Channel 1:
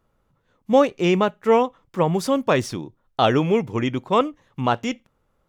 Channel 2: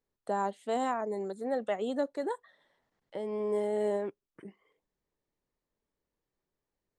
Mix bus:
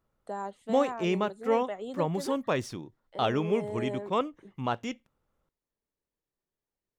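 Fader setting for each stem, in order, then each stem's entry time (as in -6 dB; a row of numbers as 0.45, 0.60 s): -9.5, -5.0 dB; 0.00, 0.00 s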